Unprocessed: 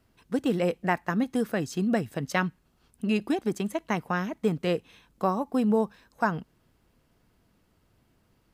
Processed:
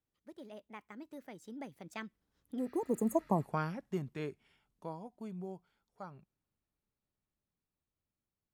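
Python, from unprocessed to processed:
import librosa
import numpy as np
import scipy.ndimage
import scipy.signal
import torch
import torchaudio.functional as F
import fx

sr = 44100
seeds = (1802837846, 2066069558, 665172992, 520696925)

y = fx.doppler_pass(x, sr, speed_mps=57, closest_m=11.0, pass_at_s=3.18)
y = fx.spec_repair(y, sr, seeds[0], start_s=2.61, length_s=0.77, low_hz=1200.0, high_hz=6300.0, source='after')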